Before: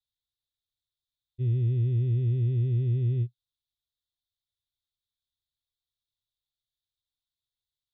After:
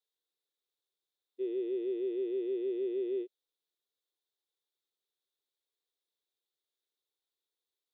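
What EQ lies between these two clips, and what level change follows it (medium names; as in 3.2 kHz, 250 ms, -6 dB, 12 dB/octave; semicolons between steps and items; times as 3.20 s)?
brick-wall FIR high-pass 280 Hz; peaking EQ 430 Hz +13 dB 1 oct; band-stop 630 Hz, Q 12; -1.0 dB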